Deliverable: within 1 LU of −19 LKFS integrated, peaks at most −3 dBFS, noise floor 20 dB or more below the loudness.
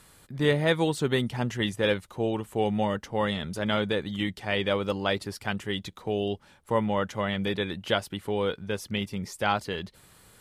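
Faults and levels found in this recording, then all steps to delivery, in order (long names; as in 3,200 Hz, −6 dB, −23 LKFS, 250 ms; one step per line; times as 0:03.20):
integrated loudness −28.5 LKFS; sample peak −11.0 dBFS; target loudness −19.0 LKFS
→ level +9.5 dB
brickwall limiter −3 dBFS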